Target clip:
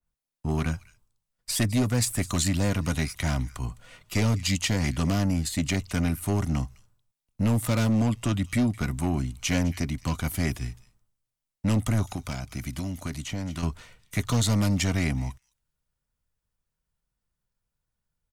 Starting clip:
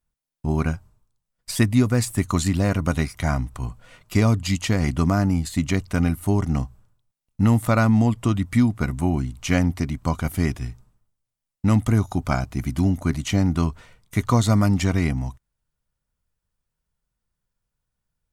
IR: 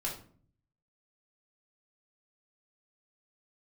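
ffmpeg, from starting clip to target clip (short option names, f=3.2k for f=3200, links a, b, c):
-filter_complex "[0:a]acrossover=split=200|630|1700[a][b][c][d];[c]aeval=exprs='0.0316*(abs(mod(val(0)/0.0316+3,4)-2)-1)':c=same[e];[d]aecho=1:1:209:0.126[f];[a][b][e][f]amix=inputs=4:normalize=0,aeval=exprs='0.531*(cos(1*acos(clip(val(0)/0.531,-1,1)))-cos(1*PI/2))+0.106*(cos(5*acos(clip(val(0)/0.531,-1,1)))-cos(5*PI/2))':c=same,asettb=1/sr,asplit=3[g][h][i];[g]atrim=end=12.034[j];[h]atrim=start=12.03:end=13.63,asetpts=PTS-STARTPTS,afade=t=in:d=0.004:c=qsin,afade=t=out:st=1.596:d=0.004:c=qsin,acrossover=split=1200|2500[k][l][m];[k]acompressor=threshold=-22dB:ratio=4[n];[l]acompressor=threshold=-39dB:ratio=4[o];[m]acompressor=threshold=-37dB:ratio=4[p];[n][o][p]amix=inputs=3:normalize=0[q];[i]atrim=start=13.626[r];[j][q]acrossfade=d=0.004:c1=hsin:c2=qsin[s];[s][r]acrossfade=d=0.004:c1=qsin:c2=hsin,adynamicequalizer=threshold=0.00708:dfrequency=1900:dqfactor=0.7:tfrequency=1900:tqfactor=0.7:attack=5:release=100:ratio=0.375:range=2.5:mode=boostabove:tftype=highshelf,volume=-8.5dB"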